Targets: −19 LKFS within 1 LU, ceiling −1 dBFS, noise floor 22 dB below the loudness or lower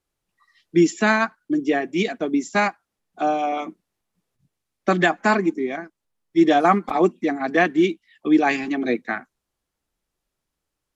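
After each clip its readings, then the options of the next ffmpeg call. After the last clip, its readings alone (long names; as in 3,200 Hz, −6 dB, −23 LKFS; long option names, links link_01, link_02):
integrated loudness −21.0 LKFS; sample peak −4.0 dBFS; target loudness −19.0 LKFS
→ -af "volume=2dB"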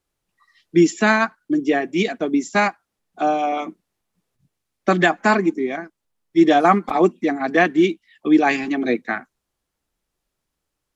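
integrated loudness −19.0 LKFS; sample peak −2.0 dBFS; background noise floor −80 dBFS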